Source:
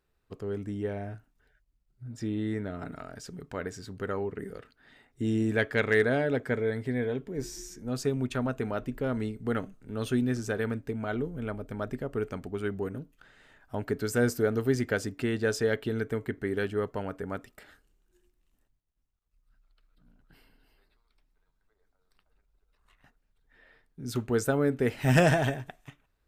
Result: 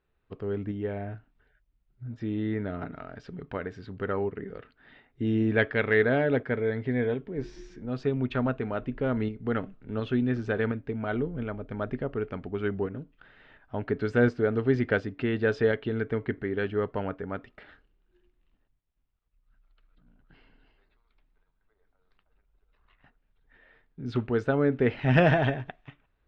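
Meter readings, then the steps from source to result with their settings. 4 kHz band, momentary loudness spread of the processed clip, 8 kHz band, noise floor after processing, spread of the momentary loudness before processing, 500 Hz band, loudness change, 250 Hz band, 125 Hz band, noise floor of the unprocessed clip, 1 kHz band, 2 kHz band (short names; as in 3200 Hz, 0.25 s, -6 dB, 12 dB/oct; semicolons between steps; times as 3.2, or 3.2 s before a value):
-2.0 dB, 15 LU, under -20 dB, -73 dBFS, 14 LU, +2.0 dB, +2.0 dB, +2.0 dB, +1.5 dB, -75 dBFS, +2.0 dB, +2.0 dB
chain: LPF 3500 Hz 24 dB/oct; tremolo saw up 1.4 Hz, depth 35%; gain +3.5 dB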